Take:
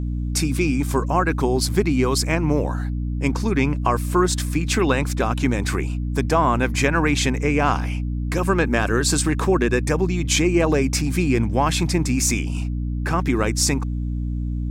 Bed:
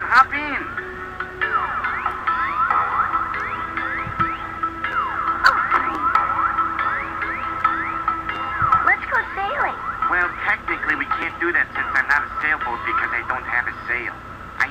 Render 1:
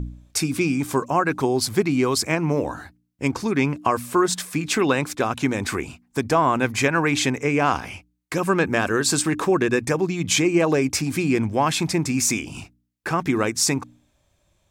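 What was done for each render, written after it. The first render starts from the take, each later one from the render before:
hum removal 60 Hz, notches 5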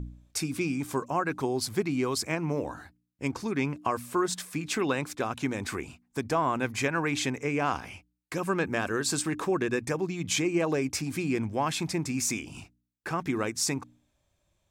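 level −8 dB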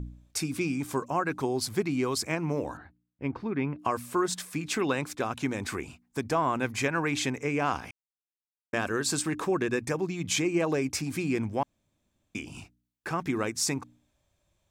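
0:02.77–0:03.79: high-frequency loss of the air 410 metres
0:07.91–0:08.73: silence
0:11.63–0:12.35: fill with room tone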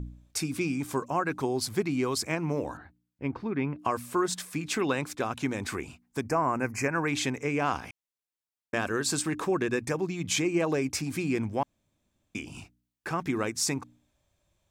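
0:06.21–0:07.08: Butterworth band-reject 3,500 Hz, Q 1.4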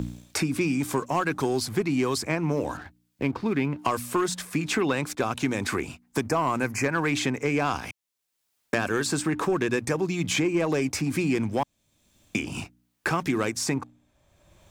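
leveller curve on the samples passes 1
multiband upward and downward compressor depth 70%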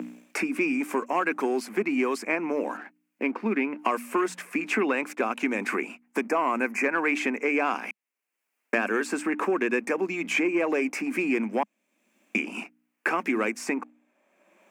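elliptic high-pass filter 210 Hz, stop band 40 dB
high shelf with overshoot 3,000 Hz −6.5 dB, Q 3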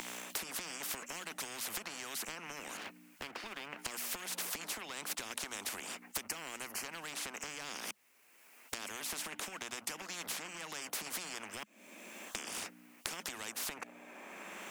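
downward compressor, threshold −34 dBFS, peak gain reduction 14 dB
every bin compressed towards the loudest bin 10 to 1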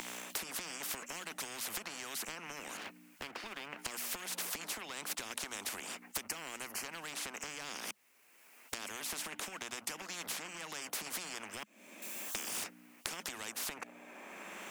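0:12.02–0:12.64: spike at every zero crossing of −38.5 dBFS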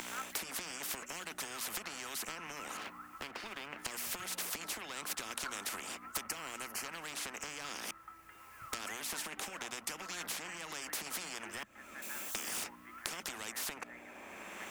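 mix in bed −31.5 dB

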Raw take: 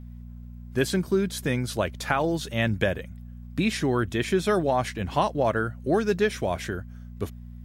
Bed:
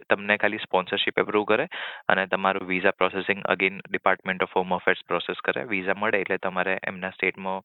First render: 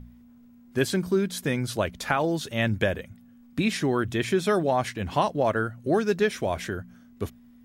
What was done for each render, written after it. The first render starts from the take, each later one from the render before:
hum removal 60 Hz, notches 3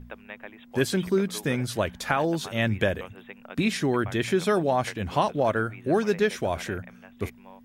mix in bed −20 dB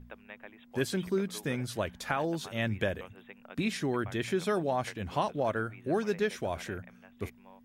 level −6.5 dB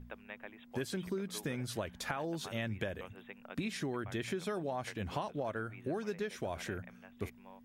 downward compressor, threshold −34 dBFS, peak gain reduction 10 dB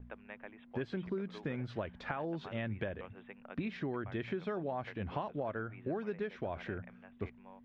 noise gate with hold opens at −50 dBFS
Bessel low-pass filter 2,300 Hz, order 4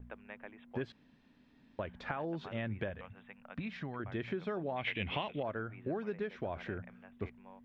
0:00.92–0:01.79: fill with room tone
0:02.90–0:04.00: parametric band 360 Hz −12 dB 0.71 octaves
0:04.76–0:05.43: flat-topped bell 2,700 Hz +16 dB 1.1 octaves

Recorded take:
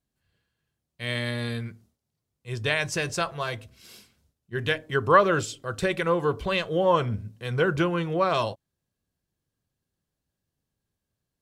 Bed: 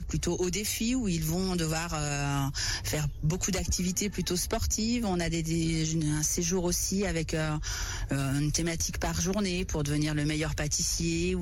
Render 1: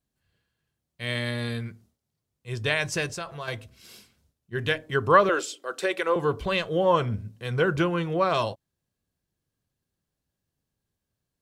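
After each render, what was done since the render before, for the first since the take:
0:03.06–0:03.48: downward compressor 2 to 1, threshold −36 dBFS
0:05.29–0:06.16: high-pass filter 310 Hz 24 dB per octave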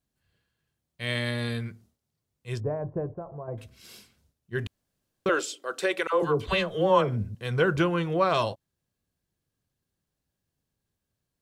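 0:02.60–0:03.58: inverse Chebyshev low-pass filter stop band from 3,700 Hz, stop band 70 dB
0:04.67–0:05.26: fill with room tone
0:06.07–0:07.35: all-pass dispersion lows, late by 70 ms, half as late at 870 Hz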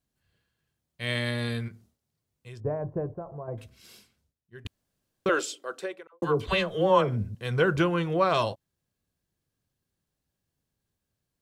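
0:01.68–0:02.65: downward compressor, threshold −41 dBFS
0:03.49–0:04.65: fade out, to −21 dB
0:05.47–0:06.22: fade out and dull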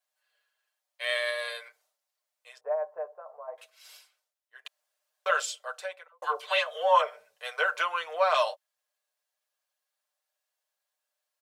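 elliptic high-pass filter 570 Hz, stop band 50 dB
comb filter 6.6 ms, depth 70%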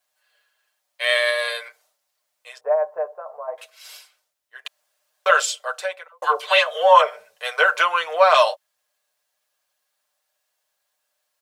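level +10 dB
brickwall limiter −2 dBFS, peak gain reduction 2 dB

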